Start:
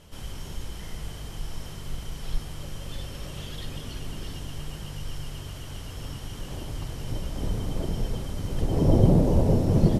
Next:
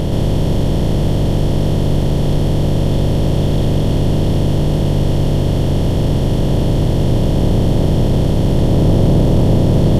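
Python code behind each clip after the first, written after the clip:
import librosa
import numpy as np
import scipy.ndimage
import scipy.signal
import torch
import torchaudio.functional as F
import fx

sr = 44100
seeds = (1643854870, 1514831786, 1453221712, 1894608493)

y = fx.bin_compress(x, sr, power=0.2)
y = fx.leveller(y, sr, passes=1)
y = y * 10.0 ** (-1.0 / 20.0)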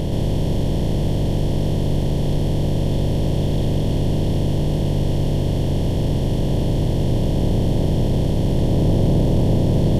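y = fx.peak_eq(x, sr, hz=1300.0, db=-12.5, octaves=0.32)
y = y * 10.0 ** (-5.0 / 20.0)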